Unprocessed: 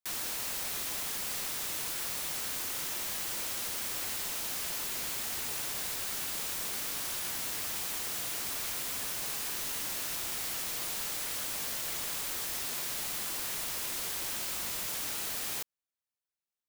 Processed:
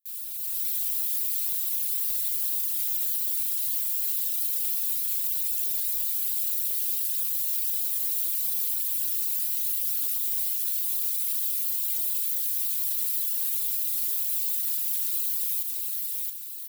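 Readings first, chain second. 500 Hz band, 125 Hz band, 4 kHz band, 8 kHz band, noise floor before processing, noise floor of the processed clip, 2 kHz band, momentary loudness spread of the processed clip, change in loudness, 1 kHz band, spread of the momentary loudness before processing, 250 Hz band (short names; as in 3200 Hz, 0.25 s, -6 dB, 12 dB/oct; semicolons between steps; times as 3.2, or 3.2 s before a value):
under -15 dB, n/a, -3.0 dB, +3.0 dB, under -85 dBFS, -32 dBFS, -10.5 dB, 1 LU, +8.5 dB, under -15 dB, 0 LU, under -10 dB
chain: EQ curve 150 Hz 0 dB, 260 Hz -12 dB, 810 Hz -24 dB, 3900 Hz +1 dB, 5900 Hz -2 dB, 14000 Hz +14 dB; reverb removal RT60 1.7 s; low shelf 190 Hz -5.5 dB; feedback echo 0.673 s, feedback 45%, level -12 dB; in parallel at -7 dB: soft clip -24 dBFS, distortion -15 dB; on the sum: limiter -24.5 dBFS, peak gain reduction 10.5 dB; comb 4.3 ms, depth 44%; AGC gain up to 9.5 dB; gain -4.5 dB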